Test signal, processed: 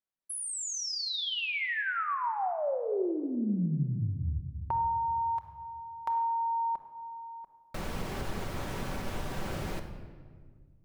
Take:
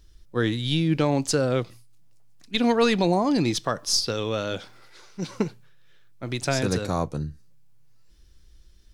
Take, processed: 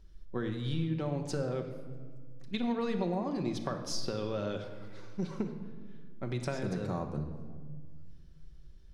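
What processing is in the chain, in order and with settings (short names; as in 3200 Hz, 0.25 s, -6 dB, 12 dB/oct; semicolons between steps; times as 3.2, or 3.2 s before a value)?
high shelf 2100 Hz -10 dB; compressor 4:1, threshold -31 dBFS; high shelf 7000 Hz -4 dB; shoebox room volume 2000 m³, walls mixed, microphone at 1.1 m; gain -2 dB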